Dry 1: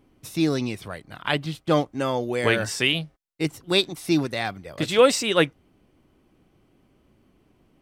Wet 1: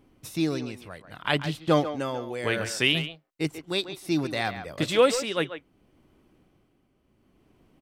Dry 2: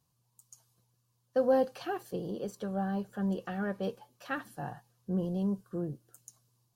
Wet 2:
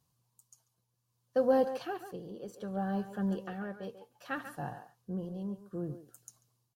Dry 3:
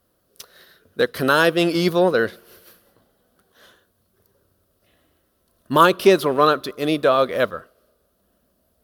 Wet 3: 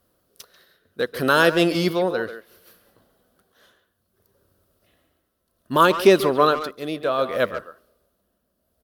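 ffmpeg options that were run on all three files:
-filter_complex "[0:a]tremolo=f=0.65:d=0.6,asplit=2[a][b];[b]adelay=140,highpass=300,lowpass=3.4k,asoftclip=type=hard:threshold=-13.5dB,volume=-10dB[c];[a][c]amix=inputs=2:normalize=0"

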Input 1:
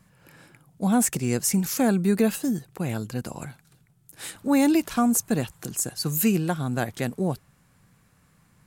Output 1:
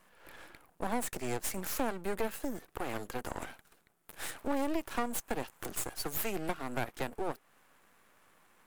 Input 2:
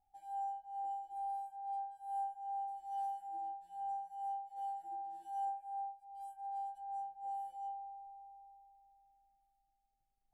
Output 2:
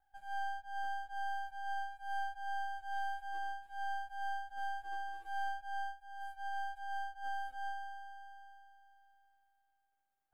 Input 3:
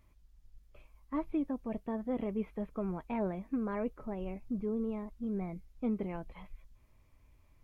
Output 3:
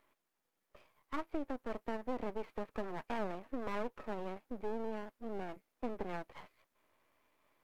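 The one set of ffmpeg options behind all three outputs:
-filter_complex "[0:a]highpass=f=200:w=0.5412,highpass=f=200:w=1.3066,acrossover=split=340 2200:gain=0.158 1 0.141[a][b][c];[a][b][c]amix=inputs=3:normalize=0,crystalizer=i=2:c=0,aeval=exprs='max(val(0),0)':c=same,acompressor=threshold=-40dB:ratio=2.5,volume=7dB"

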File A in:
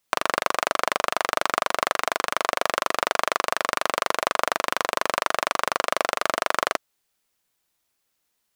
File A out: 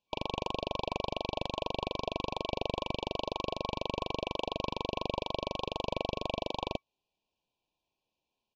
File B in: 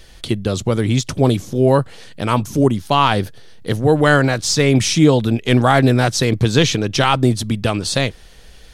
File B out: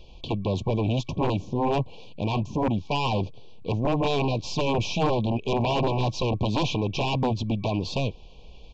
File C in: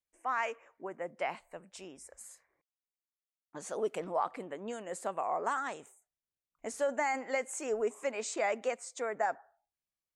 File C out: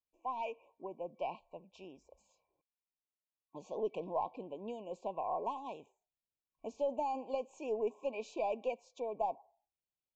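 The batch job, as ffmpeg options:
-af "aeval=exprs='0.891*(cos(1*acos(clip(val(0)/0.891,-1,1)))-cos(1*PI/2))+0.355*(cos(3*acos(clip(val(0)/0.891,-1,1)))-cos(3*PI/2))+0.1*(cos(6*acos(clip(val(0)/0.891,-1,1)))-cos(6*PI/2))+0.224*(cos(7*acos(clip(val(0)/0.891,-1,1)))-cos(7*PI/2))':c=same,lowpass=2.9k,afftfilt=real='re*(1-between(b*sr/4096,1100,2300))':imag='im*(1-between(b*sr/4096,1100,2300))':win_size=4096:overlap=0.75,aresample=16000,aeval=exprs='clip(val(0),-1,0.376)':c=same,aresample=44100,volume=-8.5dB"

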